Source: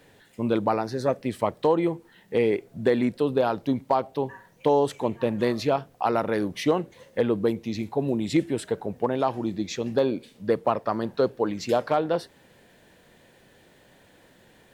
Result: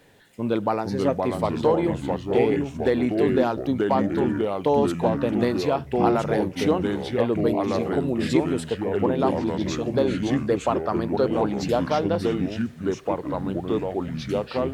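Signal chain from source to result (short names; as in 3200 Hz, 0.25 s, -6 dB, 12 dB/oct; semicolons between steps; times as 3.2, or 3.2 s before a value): echoes that change speed 0.391 s, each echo -3 st, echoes 3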